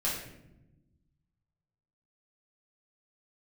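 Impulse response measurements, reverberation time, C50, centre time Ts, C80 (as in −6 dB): 0.90 s, 2.5 dB, 48 ms, 6.0 dB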